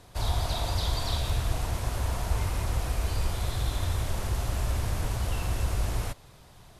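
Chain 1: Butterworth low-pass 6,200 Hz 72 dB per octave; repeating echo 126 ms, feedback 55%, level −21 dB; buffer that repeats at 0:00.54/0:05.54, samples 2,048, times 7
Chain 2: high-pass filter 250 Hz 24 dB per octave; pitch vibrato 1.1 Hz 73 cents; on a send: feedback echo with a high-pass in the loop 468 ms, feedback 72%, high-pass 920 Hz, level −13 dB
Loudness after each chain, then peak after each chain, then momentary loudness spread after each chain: −31.0, −36.0 LKFS; −15.0, −21.5 dBFS; 3, 5 LU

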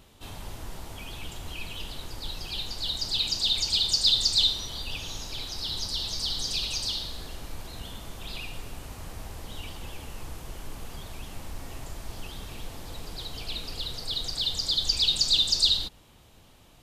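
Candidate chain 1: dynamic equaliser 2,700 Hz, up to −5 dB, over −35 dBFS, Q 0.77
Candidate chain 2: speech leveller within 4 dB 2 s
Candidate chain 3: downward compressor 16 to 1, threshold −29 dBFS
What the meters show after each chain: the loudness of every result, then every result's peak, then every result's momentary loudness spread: −30.0, −28.5, −35.0 LKFS; −12.5, −11.5, −19.0 dBFS; 18, 15, 12 LU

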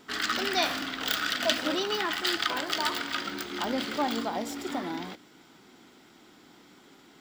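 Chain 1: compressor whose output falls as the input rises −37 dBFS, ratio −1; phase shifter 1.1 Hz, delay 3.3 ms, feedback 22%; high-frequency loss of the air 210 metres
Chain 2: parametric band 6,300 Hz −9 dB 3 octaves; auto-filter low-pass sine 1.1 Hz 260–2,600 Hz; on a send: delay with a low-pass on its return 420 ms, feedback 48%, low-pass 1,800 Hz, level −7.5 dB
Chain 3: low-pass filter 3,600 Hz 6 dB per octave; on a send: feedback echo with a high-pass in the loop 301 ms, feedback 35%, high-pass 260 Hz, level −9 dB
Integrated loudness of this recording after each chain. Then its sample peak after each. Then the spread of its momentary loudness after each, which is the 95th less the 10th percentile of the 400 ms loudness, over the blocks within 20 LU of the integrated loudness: −37.0, −31.0, −30.0 LKFS; −18.5, −14.0, −8.0 dBFS; 17, 15, 8 LU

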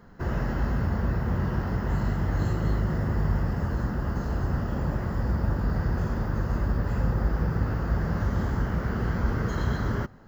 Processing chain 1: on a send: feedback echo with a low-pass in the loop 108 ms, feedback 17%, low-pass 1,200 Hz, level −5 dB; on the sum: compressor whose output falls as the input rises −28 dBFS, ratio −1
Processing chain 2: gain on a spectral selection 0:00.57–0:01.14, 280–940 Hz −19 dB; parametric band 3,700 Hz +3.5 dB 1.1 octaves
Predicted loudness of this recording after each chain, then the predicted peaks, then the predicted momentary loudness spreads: −30.0, −28.0 LKFS; −15.0, −13.0 dBFS; 2, 2 LU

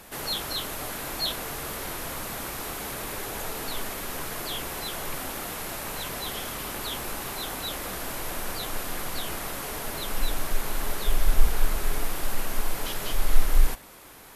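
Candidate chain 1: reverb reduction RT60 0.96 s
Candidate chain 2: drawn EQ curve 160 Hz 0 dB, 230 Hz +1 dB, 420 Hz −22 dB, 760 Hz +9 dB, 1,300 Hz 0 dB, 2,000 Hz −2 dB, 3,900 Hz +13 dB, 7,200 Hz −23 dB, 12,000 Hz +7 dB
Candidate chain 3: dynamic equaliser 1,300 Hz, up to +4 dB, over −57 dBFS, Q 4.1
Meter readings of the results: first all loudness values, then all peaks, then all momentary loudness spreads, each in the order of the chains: −33.5, −26.5, −31.5 LKFS; −5.0, −3.5, −4.5 dBFS; 6, 7, 4 LU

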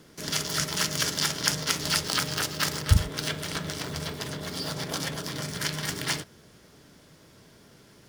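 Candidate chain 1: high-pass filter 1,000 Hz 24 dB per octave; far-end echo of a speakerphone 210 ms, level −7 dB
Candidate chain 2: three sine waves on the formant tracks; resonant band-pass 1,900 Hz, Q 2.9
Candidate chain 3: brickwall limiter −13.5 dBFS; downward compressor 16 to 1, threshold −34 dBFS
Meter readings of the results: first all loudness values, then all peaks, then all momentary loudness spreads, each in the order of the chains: −29.0, −33.0, −37.5 LKFS; −4.5, −15.5, −19.0 dBFS; 10, 10, 17 LU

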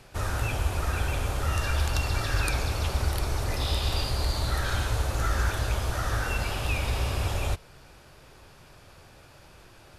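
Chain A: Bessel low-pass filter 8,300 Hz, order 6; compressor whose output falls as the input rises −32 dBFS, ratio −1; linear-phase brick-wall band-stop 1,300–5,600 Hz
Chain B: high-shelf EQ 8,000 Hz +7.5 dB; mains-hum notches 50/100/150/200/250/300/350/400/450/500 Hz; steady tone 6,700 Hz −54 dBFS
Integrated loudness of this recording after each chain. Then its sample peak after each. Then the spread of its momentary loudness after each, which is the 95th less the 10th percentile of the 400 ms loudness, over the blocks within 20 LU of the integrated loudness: −35.0, −28.5 LKFS; −18.5, −9.5 dBFS; 16, 3 LU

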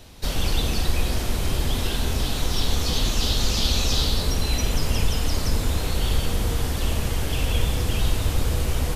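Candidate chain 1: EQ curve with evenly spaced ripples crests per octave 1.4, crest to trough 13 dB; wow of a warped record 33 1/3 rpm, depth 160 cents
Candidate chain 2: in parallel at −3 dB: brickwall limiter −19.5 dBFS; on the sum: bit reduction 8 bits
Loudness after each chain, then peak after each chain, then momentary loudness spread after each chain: −23.5, −22.0 LKFS; −5.5, −6.5 dBFS; 5, 3 LU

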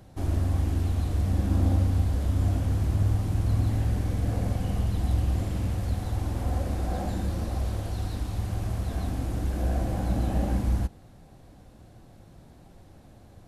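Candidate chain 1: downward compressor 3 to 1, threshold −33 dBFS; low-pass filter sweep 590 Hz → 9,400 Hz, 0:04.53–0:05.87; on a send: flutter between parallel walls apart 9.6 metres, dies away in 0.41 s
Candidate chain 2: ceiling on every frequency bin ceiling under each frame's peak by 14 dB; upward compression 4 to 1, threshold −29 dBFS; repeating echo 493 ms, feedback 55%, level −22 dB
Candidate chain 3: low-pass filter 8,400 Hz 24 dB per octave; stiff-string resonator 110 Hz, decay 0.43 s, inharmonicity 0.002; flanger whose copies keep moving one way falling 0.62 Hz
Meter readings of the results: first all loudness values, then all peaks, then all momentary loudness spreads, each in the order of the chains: −34.5, −27.5, −42.5 LKFS; −20.5, −10.5, −26.5 dBFS; 19, 13, 10 LU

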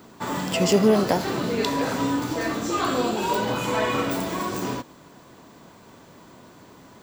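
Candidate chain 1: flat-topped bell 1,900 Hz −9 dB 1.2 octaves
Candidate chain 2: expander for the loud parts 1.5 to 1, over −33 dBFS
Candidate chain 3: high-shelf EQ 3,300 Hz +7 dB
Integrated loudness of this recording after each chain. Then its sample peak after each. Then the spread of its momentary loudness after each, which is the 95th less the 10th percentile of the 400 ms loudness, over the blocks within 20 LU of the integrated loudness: −24.5, −27.5, −23.0 LKFS; −6.5, −7.0, −4.0 dBFS; 11, 15, 10 LU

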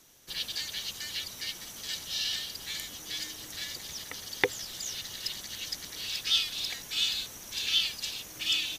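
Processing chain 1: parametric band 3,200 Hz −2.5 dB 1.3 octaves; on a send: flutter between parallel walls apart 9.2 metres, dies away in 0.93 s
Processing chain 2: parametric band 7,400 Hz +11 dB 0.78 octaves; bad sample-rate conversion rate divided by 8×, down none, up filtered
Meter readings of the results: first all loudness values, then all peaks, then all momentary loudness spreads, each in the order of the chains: −31.0, −31.0 LKFS; −5.0, −3.0 dBFS; 10, 9 LU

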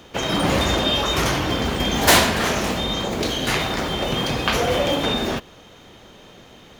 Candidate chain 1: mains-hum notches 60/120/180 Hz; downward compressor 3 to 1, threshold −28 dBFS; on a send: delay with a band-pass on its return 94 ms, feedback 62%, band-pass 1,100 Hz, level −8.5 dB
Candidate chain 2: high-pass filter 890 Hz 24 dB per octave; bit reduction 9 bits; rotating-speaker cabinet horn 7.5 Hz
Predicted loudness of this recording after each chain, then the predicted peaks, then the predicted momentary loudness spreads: −28.0, −25.0 LKFS; −8.0, −3.5 dBFS; 18, 10 LU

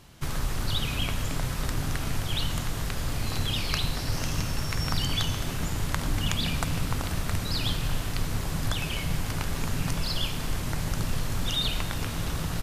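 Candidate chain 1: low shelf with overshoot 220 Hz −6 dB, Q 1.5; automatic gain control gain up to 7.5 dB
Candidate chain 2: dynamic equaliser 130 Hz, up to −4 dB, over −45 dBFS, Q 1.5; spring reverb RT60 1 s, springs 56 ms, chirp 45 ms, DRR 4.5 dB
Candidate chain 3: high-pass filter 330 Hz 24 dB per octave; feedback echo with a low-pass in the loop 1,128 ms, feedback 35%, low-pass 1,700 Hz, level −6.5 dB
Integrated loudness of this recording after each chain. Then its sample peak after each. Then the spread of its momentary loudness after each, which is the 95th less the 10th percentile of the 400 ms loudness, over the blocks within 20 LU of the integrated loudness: −25.0, −29.5, −32.5 LKFS; −2.0, −6.0, −8.5 dBFS; 5, 4, 6 LU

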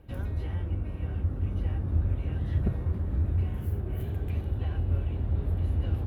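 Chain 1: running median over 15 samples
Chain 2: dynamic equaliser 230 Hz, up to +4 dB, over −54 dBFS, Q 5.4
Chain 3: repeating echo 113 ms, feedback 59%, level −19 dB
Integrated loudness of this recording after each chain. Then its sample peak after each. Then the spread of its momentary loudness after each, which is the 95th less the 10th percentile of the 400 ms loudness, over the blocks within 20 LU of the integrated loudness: −30.5, −30.5, −30.5 LKFS; −15.0, −14.5, −14.0 dBFS; 4, 4, 4 LU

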